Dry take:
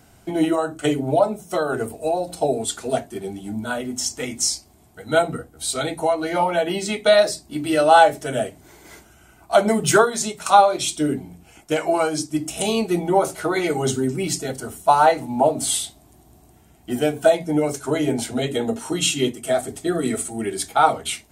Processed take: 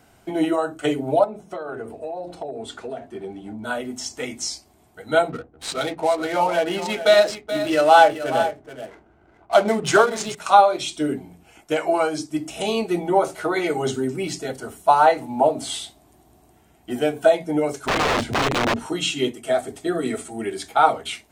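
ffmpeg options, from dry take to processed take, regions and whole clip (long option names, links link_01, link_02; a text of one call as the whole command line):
ffmpeg -i in.wav -filter_complex "[0:a]asettb=1/sr,asplit=3[link_01][link_02][link_03];[link_01]atrim=end=1.244[link_04];[link_02]atrim=start=1.24:end=3.64,asetpts=PTS-STARTPTS,afade=type=in:duration=0.004:curve=qsin,afade=type=out:start_time=2.396:duration=0.004:curve=qsin,aemphasis=mode=reproduction:type=75fm,bandreject=frequency=50.6:width_type=h:width=4,bandreject=frequency=101.2:width_type=h:width=4,bandreject=frequency=151.8:width_type=h:width=4,bandreject=frequency=202.4:width_type=h:width=4,bandreject=frequency=253:width_type=h:width=4,bandreject=frequency=303.6:width_type=h:width=4,bandreject=frequency=354.2:width_type=h:width=4,acompressor=threshold=-26dB:ratio=12:attack=3.2:release=140:knee=1:detection=peak[link_05];[link_03]atrim=start=3.636[link_06];[link_04][link_05]acrossfade=duration=0.004:curve1=hsin:curve2=qsin[link_07];[link_07][link_06]acrossfade=duration=0.004:curve1=qsin:curve2=hsin,asettb=1/sr,asplit=3[link_08][link_09][link_10];[link_08]atrim=end=5.294[link_11];[link_09]atrim=start=5.29:end=10.35,asetpts=PTS-STARTPTS,afade=type=in:duration=0.004:curve=qsin,afade=type=out:start_time=5.056:duration=0.004:curve=qsin,adynamicsmooth=sensitivity=7.5:basefreq=740,equalizer=frequency=12000:width_type=o:width=1.7:gain=8.5,aecho=1:1:428:0.266,atrim=end_sample=223146[link_12];[link_10]atrim=start=10.346[link_13];[link_11][link_12]acrossfade=duration=0.004:curve1=hsin:curve2=qsin[link_14];[link_14][link_13]acrossfade=duration=0.004:curve1=qsin:curve2=hsin,asettb=1/sr,asplit=3[link_15][link_16][link_17];[link_15]atrim=end=17.864[link_18];[link_16]atrim=start=17.86:end=18.86,asetpts=PTS-STARTPTS,afade=type=in:duration=0.004:curve=qsin,afade=type=out:start_time=0.996:duration=0.004:curve=qsin,bass=frequency=250:gain=15,treble=frequency=4000:gain=-4,aeval=exprs='(mod(5.01*val(0)+1,2)-1)/5.01':channel_layout=same[link_19];[link_17]atrim=start=18.856[link_20];[link_18][link_19]acrossfade=duration=0.004:curve1=hsin:curve2=qsin[link_21];[link_21][link_20]acrossfade=duration=0.004:curve1=qsin:curve2=hsin,acrossover=split=7300[link_22][link_23];[link_23]acompressor=threshold=-39dB:ratio=4:attack=1:release=60[link_24];[link_22][link_24]amix=inputs=2:normalize=0,bass=frequency=250:gain=-6,treble=frequency=4000:gain=-5" out.wav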